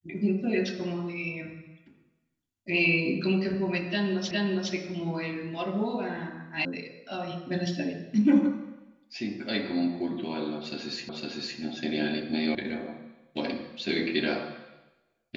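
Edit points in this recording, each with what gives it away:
4.31 s: repeat of the last 0.41 s
6.65 s: sound stops dead
11.09 s: repeat of the last 0.51 s
12.55 s: sound stops dead

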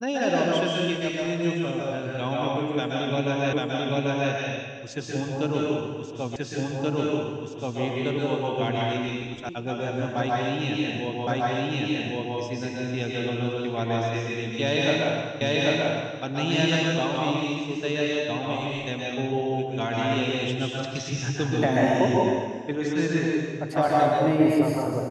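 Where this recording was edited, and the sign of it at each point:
3.53 s: repeat of the last 0.79 s
6.36 s: repeat of the last 1.43 s
9.49 s: sound stops dead
11.27 s: repeat of the last 1.11 s
15.41 s: repeat of the last 0.79 s

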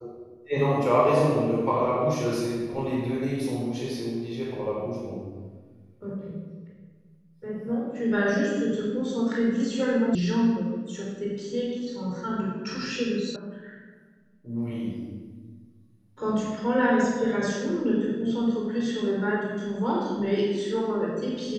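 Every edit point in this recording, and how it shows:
10.15 s: sound stops dead
13.36 s: sound stops dead

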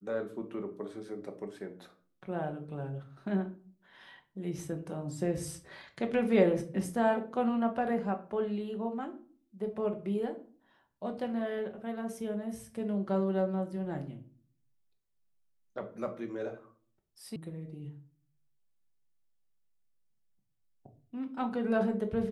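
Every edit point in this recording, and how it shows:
17.36 s: sound stops dead

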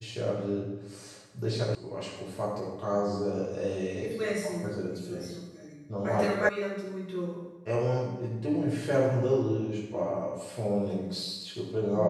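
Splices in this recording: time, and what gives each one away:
1.75 s: sound stops dead
6.49 s: sound stops dead

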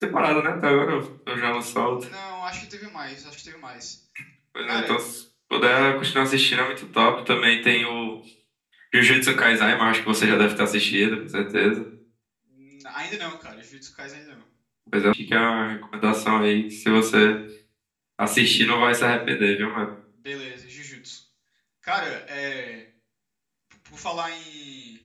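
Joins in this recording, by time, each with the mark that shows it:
15.13 s: sound stops dead

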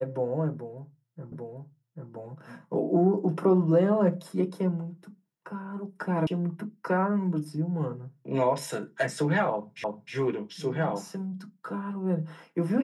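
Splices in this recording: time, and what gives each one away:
1.32 s: repeat of the last 0.79 s
6.27 s: sound stops dead
9.84 s: repeat of the last 0.31 s

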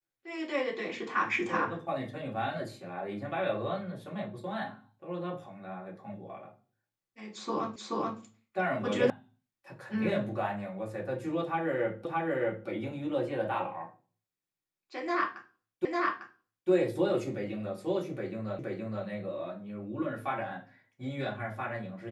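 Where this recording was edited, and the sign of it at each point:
7.76 s: repeat of the last 0.43 s
9.10 s: sound stops dead
12.05 s: repeat of the last 0.62 s
15.85 s: repeat of the last 0.85 s
18.59 s: repeat of the last 0.47 s

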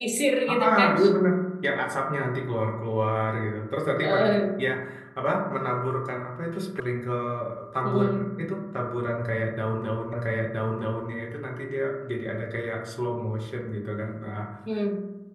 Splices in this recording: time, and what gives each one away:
6.80 s: sound stops dead
10.13 s: repeat of the last 0.97 s

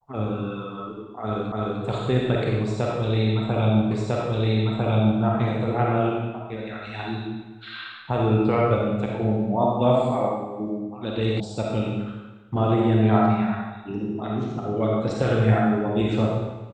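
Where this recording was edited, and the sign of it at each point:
1.52 s: repeat of the last 0.3 s
3.91 s: repeat of the last 1.3 s
11.40 s: sound stops dead

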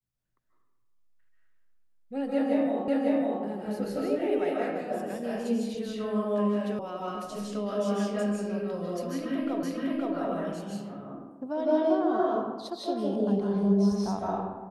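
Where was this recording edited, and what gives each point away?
2.88 s: repeat of the last 0.55 s
6.79 s: sound stops dead
9.63 s: repeat of the last 0.52 s

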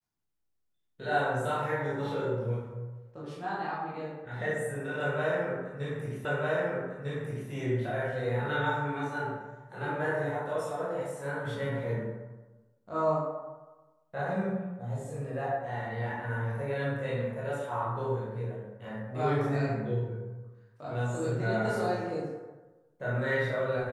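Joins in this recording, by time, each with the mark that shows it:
6.25 s: repeat of the last 1.25 s

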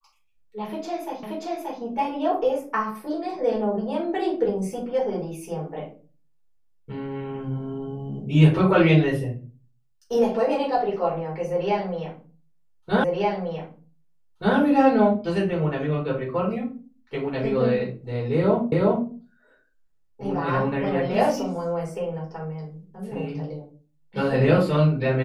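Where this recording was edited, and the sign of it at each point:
1.23 s: repeat of the last 0.58 s
13.04 s: repeat of the last 1.53 s
18.72 s: repeat of the last 0.37 s

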